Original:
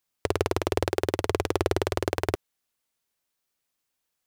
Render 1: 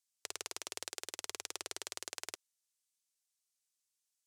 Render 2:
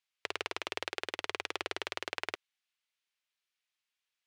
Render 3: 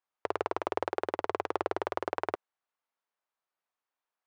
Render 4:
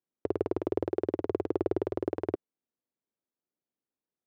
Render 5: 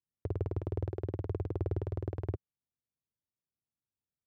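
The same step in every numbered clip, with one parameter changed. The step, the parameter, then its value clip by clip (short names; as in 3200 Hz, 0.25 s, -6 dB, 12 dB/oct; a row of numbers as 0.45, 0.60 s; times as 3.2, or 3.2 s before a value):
band-pass, frequency: 7400, 2700, 970, 290, 110 Hz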